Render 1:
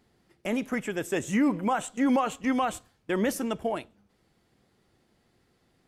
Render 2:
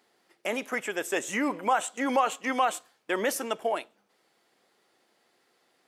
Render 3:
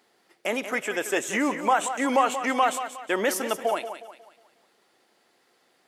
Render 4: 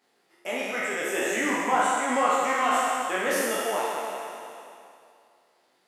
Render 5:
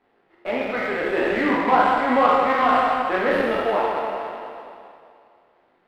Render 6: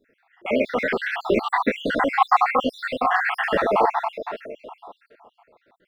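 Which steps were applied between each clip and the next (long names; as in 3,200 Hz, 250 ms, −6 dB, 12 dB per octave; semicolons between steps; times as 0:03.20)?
high-pass filter 480 Hz 12 dB per octave; level +3.5 dB
feedback echo with a high-pass in the loop 181 ms, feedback 39%, high-pass 200 Hz, level −10 dB; level +3 dB
peak hold with a decay on every bin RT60 2.61 s; micro pitch shift up and down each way 23 cents; level −3 dB
gap after every zero crossing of 0.11 ms; high-frequency loss of the air 460 metres; level +8.5 dB
time-frequency cells dropped at random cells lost 66%; level +5.5 dB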